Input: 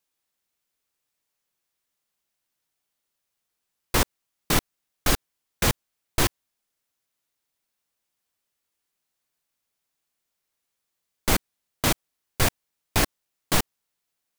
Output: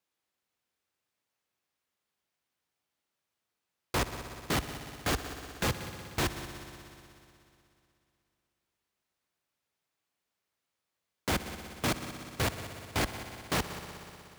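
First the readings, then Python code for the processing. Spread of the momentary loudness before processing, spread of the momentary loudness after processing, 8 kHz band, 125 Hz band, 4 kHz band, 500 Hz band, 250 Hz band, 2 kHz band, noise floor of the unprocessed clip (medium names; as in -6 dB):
6 LU, 11 LU, -10.5 dB, -6.0 dB, -7.5 dB, -5.0 dB, -5.5 dB, -5.5 dB, -81 dBFS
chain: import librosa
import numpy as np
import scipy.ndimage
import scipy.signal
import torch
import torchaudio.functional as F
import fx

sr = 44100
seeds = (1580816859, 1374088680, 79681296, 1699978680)

p1 = scipy.signal.sosfilt(scipy.signal.butter(4, 52.0, 'highpass', fs=sr, output='sos'), x)
p2 = fx.high_shelf(p1, sr, hz=5300.0, db=-10.5)
p3 = np.clip(p2, -10.0 ** (-26.0 / 20.0), 10.0 ** (-26.0 / 20.0))
y = p3 + fx.echo_heads(p3, sr, ms=61, heads='all three', feedback_pct=73, wet_db=-17.5, dry=0)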